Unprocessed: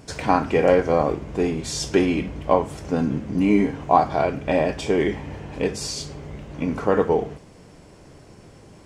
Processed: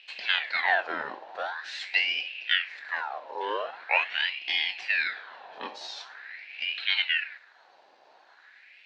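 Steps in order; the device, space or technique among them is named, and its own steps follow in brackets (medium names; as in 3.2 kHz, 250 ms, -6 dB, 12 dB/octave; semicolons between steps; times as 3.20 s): voice changer toy (ring modulator with a swept carrier 1.7 kHz, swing 60%, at 0.44 Hz; cabinet simulation 470–5000 Hz, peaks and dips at 740 Hz +4 dB, 1.2 kHz -9 dB, 1.7 kHz +6 dB, 2.6 kHz +4 dB, 4.1 kHz +9 dB); trim -8 dB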